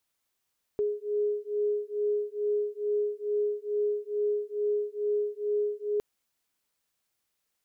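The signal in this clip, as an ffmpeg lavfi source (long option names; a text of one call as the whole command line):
ffmpeg -f lavfi -i "aevalsrc='0.0335*(sin(2*PI*415*t)+sin(2*PI*417.3*t))':duration=5.21:sample_rate=44100" out.wav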